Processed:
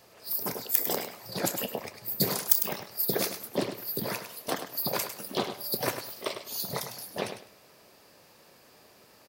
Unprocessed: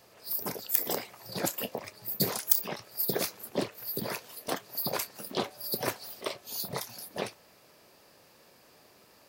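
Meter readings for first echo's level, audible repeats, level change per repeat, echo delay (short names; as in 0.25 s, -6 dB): -9.0 dB, 3, -13.0 dB, 0.102 s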